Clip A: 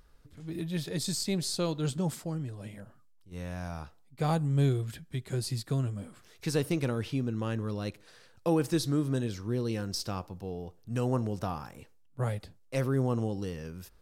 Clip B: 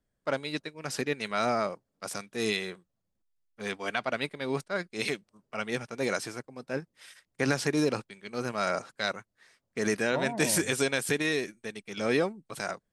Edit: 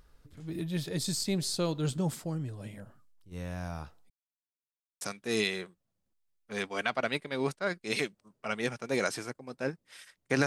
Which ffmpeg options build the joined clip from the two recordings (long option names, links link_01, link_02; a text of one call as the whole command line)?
ffmpeg -i cue0.wav -i cue1.wav -filter_complex "[0:a]apad=whole_dur=10.46,atrim=end=10.46,asplit=2[link_01][link_02];[link_01]atrim=end=4.1,asetpts=PTS-STARTPTS,afade=type=out:start_time=4.096:duration=0.004:curve=hsin[link_03];[link_02]atrim=start=4.1:end=5.01,asetpts=PTS-STARTPTS,volume=0[link_04];[1:a]atrim=start=2.1:end=7.55,asetpts=PTS-STARTPTS,afade=type=in:duration=0.004:curve=hsin[link_05];[link_03][link_04][link_05]concat=n=3:v=0:a=1" out.wav